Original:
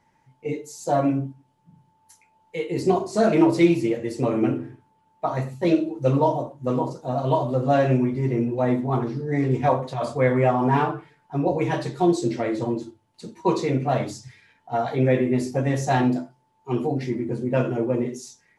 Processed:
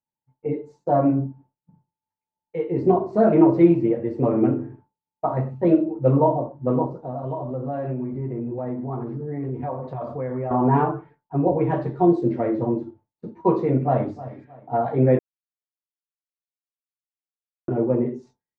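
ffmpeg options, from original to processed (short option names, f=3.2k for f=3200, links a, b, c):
-filter_complex "[0:a]asettb=1/sr,asplit=3[a][b][c];[a]atrim=end=6.864[d];[b]atrim=start=6.86:end=10.51,asetpts=PTS-STARTPTS,afade=t=in:d=0.004:c=qsin,afade=t=out:st=3.646:d=0.004:c=qsin,acompressor=threshold=-30dB:ratio=3:attack=3.2:release=140:knee=1:detection=peak[e];[c]atrim=start=10.506[f];[d][e]acrossfade=d=0.004:c1=hsin:c2=qsin[g];[g][f]acrossfade=d=0.004:c1=qsin:c2=hsin,asplit=2[h][i];[i]afade=t=in:st=13.7:d=0.01,afade=t=out:st=14.13:d=0.01,aecho=0:1:310|620|930:0.158489|0.0554713|0.0194149[j];[h][j]amix=inputs=2:normalize=0,asplit=3[k][l][m];[k]atrim=end=15.19,asetpts=PTS-STARTPTS,afade=t=out:st=15.186:d=0.004:c=hsin[n];[l]atrim=start=15.19:end=17.68,asetpts=PTS-STARTPTS,volume=0[o];[m]atrim=start=17.68,asetpts=PTS-STARTPTS,afade=t=in:d=0.004:c=hsin[p];[n][o][p]concat=n=3:v=0:a=1,lowpass=1.1k,agate=range=-33dB:threshold=-46dB:ratio=3:detection=peak,volume=2.5dB"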